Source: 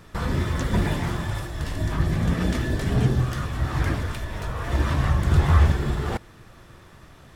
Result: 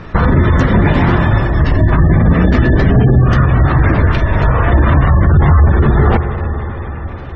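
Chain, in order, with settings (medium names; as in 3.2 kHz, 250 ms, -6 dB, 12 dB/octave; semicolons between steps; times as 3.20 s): 0.61–1.30 s: bass shelf 100 Hz -4.5 dB; reverberation RT60 5.1 s, pre-delay 42 ms, DRR 10.5 dB; spectral gate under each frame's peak -30 dB strong; distance through air 160 m; band-stop 3.4 kHz, Q 13; loudness maximiser +19 dB; trim -1 dB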